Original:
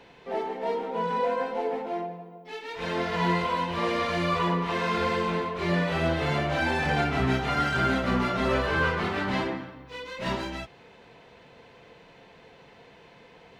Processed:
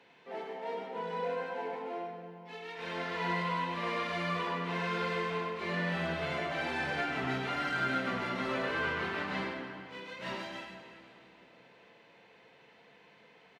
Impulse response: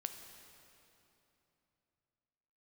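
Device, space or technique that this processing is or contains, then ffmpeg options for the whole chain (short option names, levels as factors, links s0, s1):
PA in a hall: -filter_complex "[0:a]highpass=140,equalizer=f=2100:t=o:w=1.9:g=5,aecho=1:1:99:0.447[s0];[1:a]atrim=start_sample=2205[s1];[s0][s1]afir=irnorm=-1:irlink=0,volume=0.376"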